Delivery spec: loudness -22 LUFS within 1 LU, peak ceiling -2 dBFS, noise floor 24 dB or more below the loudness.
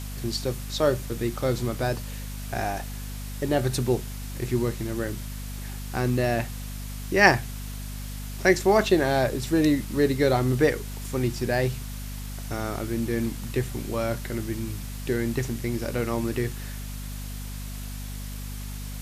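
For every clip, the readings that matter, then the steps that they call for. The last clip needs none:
hum 50 Hz; highest harmonic 250 Hz; hum level -33 dBFS; noise floor -35 dBFS; noise floor target -51 dBFS; loudness -27.0 LUFS; peak level -3.0 dBFS; loudness target -22.0 LUFS
-> hum notches 50/100/150/200/250 Hz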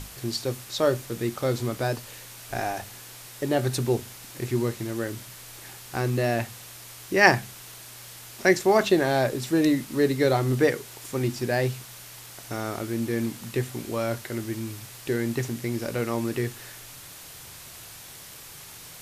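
hum not found; noise floor -44 dBFS; noise floor target -51 dBFS
-> noise print and reduce 7 dB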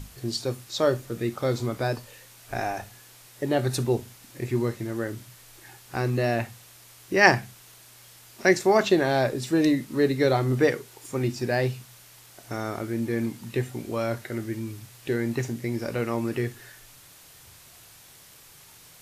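noise floor -51 dBFS; loudness -26.5 LUFS; peak level -3.0 dBFS; loudness target -22.0 LUFS
-> trim +4.5 dB; peak limiter -2 dBFS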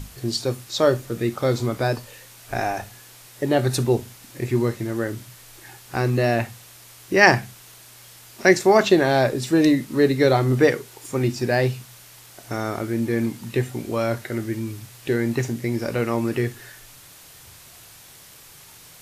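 loudness -22.0 LUFS; peak level -2.0 dBFS; noise floor -47 dBFS

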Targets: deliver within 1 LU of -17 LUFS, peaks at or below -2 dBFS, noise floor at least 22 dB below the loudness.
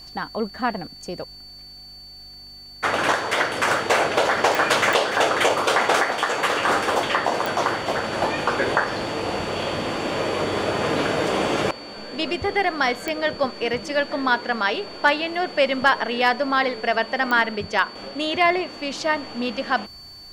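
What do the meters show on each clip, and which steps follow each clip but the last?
clicks found 5; steady tone 4.5 kHz; tone level -40 dBFS; loudness -22.0 LUFS; peak level -5.5 dBFS; loudness target -17.0 LUFS
-> de-click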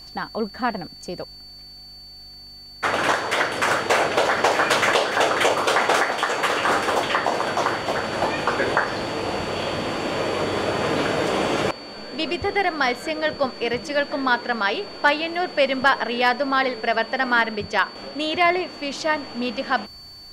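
clicks found 0; steady tone 4.5 kHz; tone level -40 dBFS
-> band-stop 4.5 kHz, Q 30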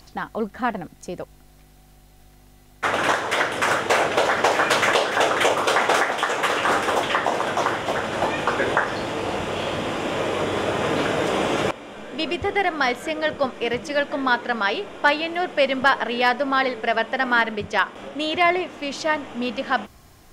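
steady tone not found; loudness -22.0 LUFS; peak level -5.0 dBFS; loudness target -17.0 LUFS
-> trim +5 dB; peak limiter -2 dBFS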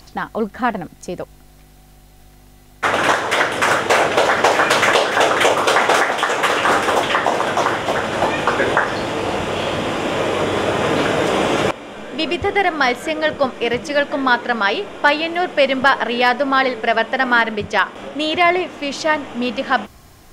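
loudness -17.5 LUFS; peak level -2.0 dBFS; noise floor -46 dBFS

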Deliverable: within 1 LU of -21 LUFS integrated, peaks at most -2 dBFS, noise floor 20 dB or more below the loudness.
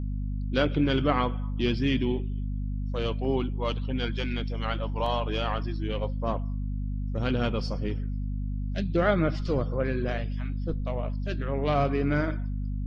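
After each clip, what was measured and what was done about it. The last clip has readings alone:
dropouts 2; longest dropout 3.0 ms; hum 50 Hz; highest harmonic 250 Hz; hum level -28 dBFS; loudness -29.0 LUFS; peak level -11.0 dBFS; loudness target -21.0 LUFS
-> interpolate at 3.25/5.06 s, 3 ms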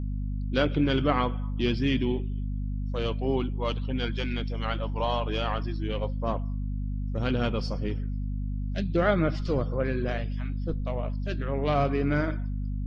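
dropouts 0; hum 50 Hz; highest harmonic 250 Hz; hum level -28 dBFS
-> de-hum 50 Hz, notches 5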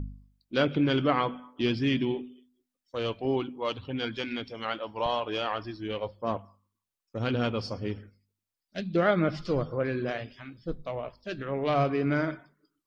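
hum not found; loudness -30.0 LUFS; peak level -11.5 dBFS; loudness target -21.0 LUFS
-> trim +9 dB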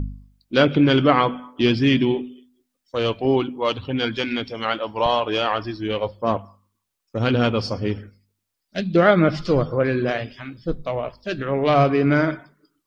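loudness -21.0 LUFS; peak level -2.5 dBFS; noise floor -78 dBFS

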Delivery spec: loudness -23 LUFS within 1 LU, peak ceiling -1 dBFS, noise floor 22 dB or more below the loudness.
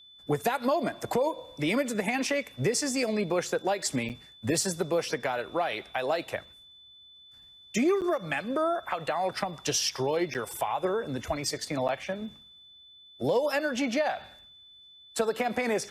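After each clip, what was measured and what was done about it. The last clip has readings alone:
dropouts 4; longest dropout 8.2 ms; steady tone 3.5 kHz; tone level -51 dBFS; loudness -29.5 LUFS; peak level -14.0 dBFS; loudness target -23.0 LUFS
-> interpolate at 4.09/8.01/10.34/11.88 s, 8.2 ms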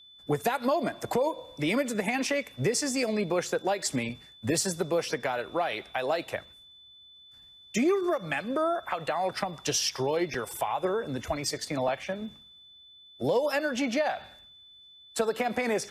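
dropouts 0; steady tone 3.5 kHz; tone level -51 dBFS
-> band-stop 3.5 kHz, Q 30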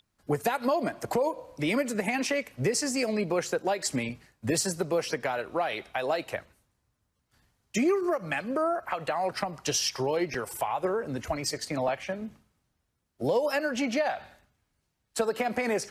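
steady tone not found; loudness -29.5 LUFS; peak level -14.0 dBFS; loudness target -23.0 LUFS
-> trim +6.5 dB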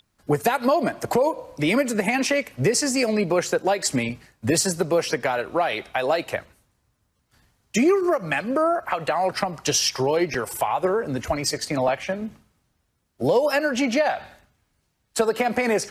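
loudness -23.0 LUFS; peak level -7.5 dBFS; noise floor -71 dBFS

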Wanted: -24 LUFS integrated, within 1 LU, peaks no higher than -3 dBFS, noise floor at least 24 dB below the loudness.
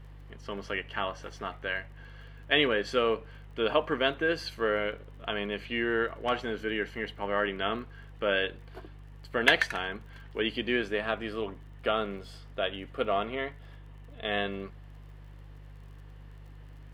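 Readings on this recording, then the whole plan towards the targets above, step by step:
tick rate 37 per s; hum 50 Hz; highest harmonic 150 Hz; hum level -45 dBFS; loudness -30.5 LUFS; peak level -5.0 dBFS; loudness target -24.0 LUFS
-> de-click; de-hum 50 Hz, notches 3; trim +6.5 dB; peak limiter -3 dBFS

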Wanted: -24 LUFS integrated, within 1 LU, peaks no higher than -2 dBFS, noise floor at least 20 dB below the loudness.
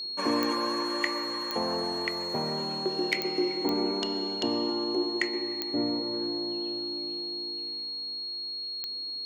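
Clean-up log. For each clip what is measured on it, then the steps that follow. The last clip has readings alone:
clicks found 6; steady tone 4.3 kHz; tone level -33 dBFS; loudness -29.5 LUFS; peak level -11.0 dBFS; loudness target -24.0 LUFS
-> de-click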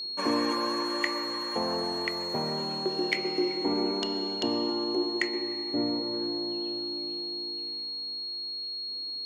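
clicks found 0; steady tone 4.3 kHz; tone level -33 dBFS
-> band-stop 4.3 kHz, Q 30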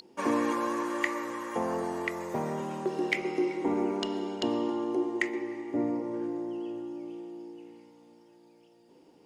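steady tone not found; loudness -32.0 LUFS; peak level -12.0 dBFS; loudness target -24.0 LUFS
-> trim +8 dB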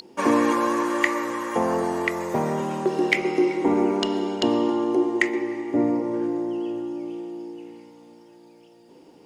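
loudness -24.0 LUFS; peak level -4.0 dBFS; noise floor -51 dBFS

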